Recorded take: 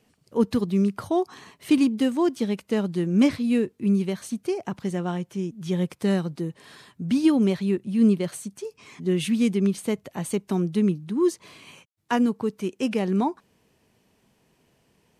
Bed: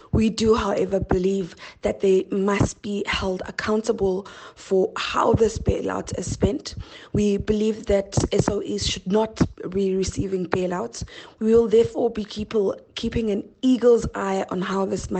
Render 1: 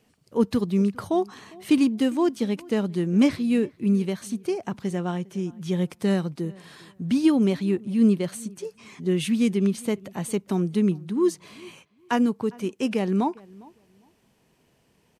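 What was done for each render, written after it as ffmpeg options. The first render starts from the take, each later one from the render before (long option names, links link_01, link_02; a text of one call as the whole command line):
ffmpeg -i in.wav -filter_complex "[0:a]asplit=2[link_01][link_02];[link_02]adelay=404,lowpass=frequency=2100:poles=1,volume=-23dB,asplit=2[link_03][link_04];[link_04]adelay=404,lowpass=frequency=2100:poles=1,volume=0.21[link_05];[link_01][link_03][link_05]amix=inputs=3:normalize=0" out.wav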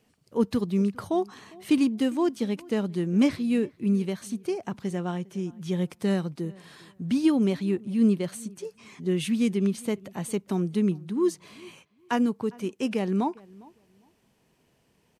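ffmpeg -i in.wav -af "volume=-2.5dB" out.wav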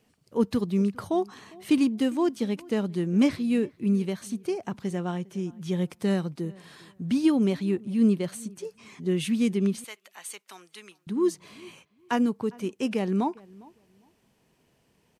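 ffmpeg -i in.wav -filter_complex "[0:a]asettb=1/sr,asplit=3[link_01][link_02][link_03];[link_01]atrim=end=9.844[link_04];[link_02]atrim=start=9.84:end=11.07,asetpts=PTS-STARTPTS,afade=type=in:duration=0.004:curve=qsin,afade=type=out:start_time=1.226:duration=0.004:curve=qsin,highpass=1400[link_05];[link_03]atrim=start=11.066[link_06];[link_04][link_05]acrossfade=duration=0.004:curve1=hsin:curve2=qsin[link_07];[link_07][link_06]acrossfade=duration=0.004:curve1=qsin:curve2=hsin" out.wav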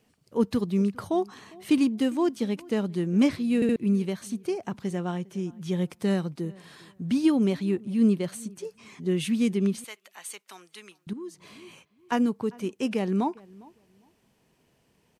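ffmpeg -i in.wav -filter_complex "[0:a]asettb=1/sr,asplit=3[link_01][link_02][link_03];[link_01]atrim=end=11.134[link_04];[link_02]atrim=start=11.13:end=12.12,asetpts=PTS-STARTPTS,afade=type=in:duration=0.004:curve=qsin,afade=type=out:start_time=0.986:duration=0.004:curve=qsin,acompressor=threshold=-43dB:ratio=2.5:attack=3.2:release=140:knee=1:detection=peak[link_05];[link_03]atrim=start=12.116[link_06];[link_04][link_05]acrossfade=duration=0.004:curve1=hsin:curve2=qsin[link_07];[link_07][link_06]acrossfade=duration=0.004:curve1=qsin:curve2=hsin,asplit=4[link_08][link_09][link_10][link_11];[link_08]atrim=end=3.622[link_12];[link_09]atrim=start=3.548:end=3.622[link_13];[link_10]atrim=start=3.548:end=3.622[link_14];[link_11]atrim=start=3.758[link_15];[link_12][link_13]acrossfade=duration=0.004:curve1=hsin:curve2=hsin[link_16];[link_16][link_14]acrossfade=duration=0.004:curve1=hsin:curve2=hsin[link_17];[link_17][link_15]acrossfade=duration=0.004:curve1=hsin:curve2=hsin" out.wav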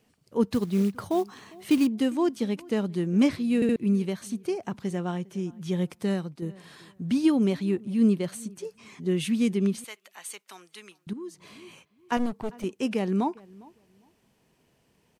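ffmpeg -i in.wav -filter_complex "[0:a]asettb=1/sr,asplit=3[link_01][link_02][link_03];[link_01]atrim=end=0.524[link_04];[link_02]atrim=start=0.52:end=1.87,asetpts=PTS-STARTPTS,afade=type=in:duration=0.004:curve=qsin,afade=type=out:start_time=1.346:duration=0.004:curve=qsin,acrusher=bits=6:mode=log:mix=0:aa=0.000001[link_05];[link_03]atrim=start=1.866[link_06];[link_04][link_05]acrossfade=duration=0.004:curve1=hsin:curve2=qsin[link_07];[link_07][link_06]acrossfade=duration=0.004:curve1=qsin:curve2=hsin,asettb=1/sr,asplit=3[link_08][link_09][link_10];[link_08]atrim=end=12.174[link_11];[link_09]atrim=start=12.17:end=12.64,asetpts=PTS-STARTPTS,afade=type=in:duration=0.004:curve=qsin,afade=type=out:start_time=0.466:duration=0.004:curve=qsin,aeval=exprs='clip(val(0),-1,0.0119)':channel_layout=same[link_12];[link_10]atrim=start=12.636[link_13];[link_11][link_12]acrossfade=duration=0.004:curve1=hsin:curve2=qsin[link_14];[link_14][link_13]acrossfade=duration=0.004:curve1=qsin:curve2=hsin,asplit=2[link_15][link_16];[link_15]atrim=end=6.42,asetpts=PTS-STARTPTS,afade=type=out:start_time=5.9:duration=0.52:silence=0.473151[link_17];[link_16]atrim=start=6.42,asetpts=PTS-STARTPTS,afade=type=in:duration=0.004:curve=hsin:silence=0.473151[link_18];[link_17][link_18]concat=n=2:v=0:a=1" out.wav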